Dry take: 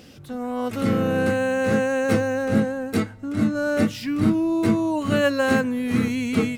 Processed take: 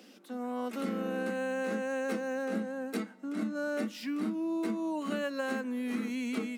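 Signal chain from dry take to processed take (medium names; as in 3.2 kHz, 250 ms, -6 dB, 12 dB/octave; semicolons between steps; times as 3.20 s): Chebyshev high-pass 190 Hz, order 8; compression, threshold -23 dBFS, peak gain reduction 8.5 dB; trim -7 dB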